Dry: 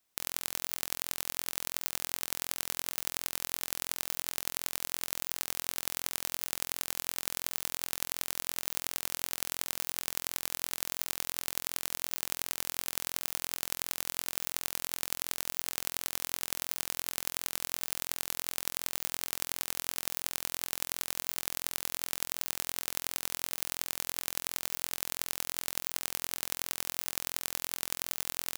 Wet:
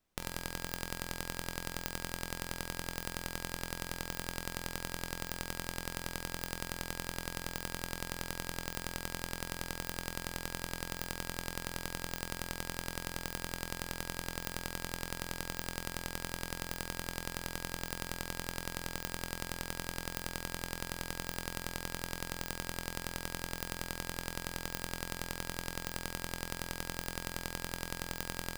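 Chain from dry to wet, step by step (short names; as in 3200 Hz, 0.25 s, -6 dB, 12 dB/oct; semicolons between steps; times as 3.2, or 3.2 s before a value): tilt -3 dB/oct; resonator 180 Hz, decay 0.87 s, harmonics odd, mix 80%; gain +14 dB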